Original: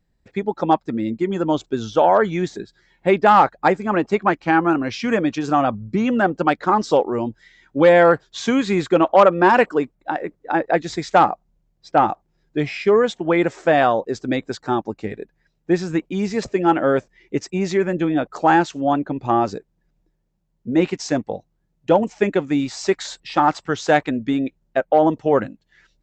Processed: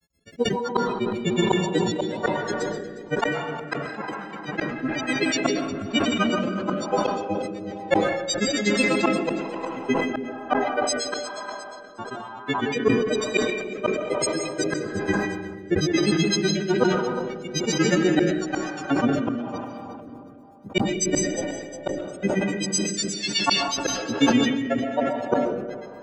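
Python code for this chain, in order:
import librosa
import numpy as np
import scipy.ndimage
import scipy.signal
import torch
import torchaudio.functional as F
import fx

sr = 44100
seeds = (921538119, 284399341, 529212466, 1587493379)

y = fx.freq_snap(x, sr, grid_st=4)
y = scipy.signal.sosfilt(scipy.signal.butter(2, 43.0, 'highpass', fs=sr, output='sos'), y)
y = fx.high_shelf(y, sr, hz=2700.0, db=5.0)
y = fx.rider(y, sr, range_db=5, speed_s=0.5)
y = fx.granulator(y, sr, seeds[0], grain_ms=76.0, per_s=8.1, spray_ms=100.0, spread_st=3)
y = fx.gate_flip(y, sr, shuts_db=-7.0, range_db=-38)
y = fx.echo_feedback(y, sr, ms=357, feedback_pct=33, wet_db=-13.5)
y = fx.rev_freeverb(y, sr, rt60_s=3.1, hf_ratio=0.35, predelay_ms=90, drr_db=5.0)
y = fx.rotary(y, sr, hz=1.1)
y = fx.sustainer(y, sr, db_per_s=43.0)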